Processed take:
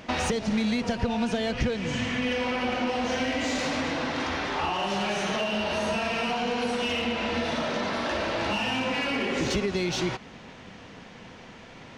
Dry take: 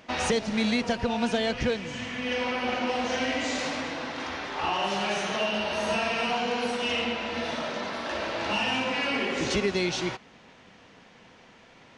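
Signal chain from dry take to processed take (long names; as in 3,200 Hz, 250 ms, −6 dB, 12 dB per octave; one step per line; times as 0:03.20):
in parallel at −4.5 dB: soft clipping −30 dBFS, distortion −9 dB
on the sum: downward compressor, threshold −28 dBFS, peak gain reduction 8.5 dB
low-shelf EQ 240 Hz +6.5 dB
level +2 dB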